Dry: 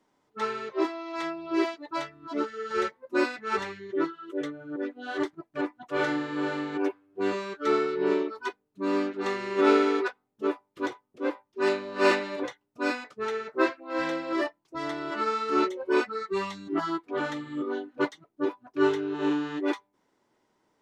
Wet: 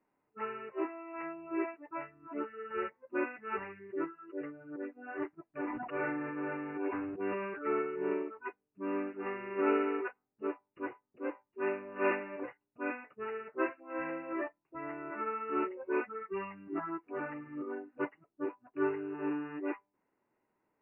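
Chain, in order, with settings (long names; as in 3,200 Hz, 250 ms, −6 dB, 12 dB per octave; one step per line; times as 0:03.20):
linear-phase brick-wall low-pass 2,900 Hz
0:05.47–0:07.82: level that may fall only so fast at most 26 dB per second
level −8.5 dB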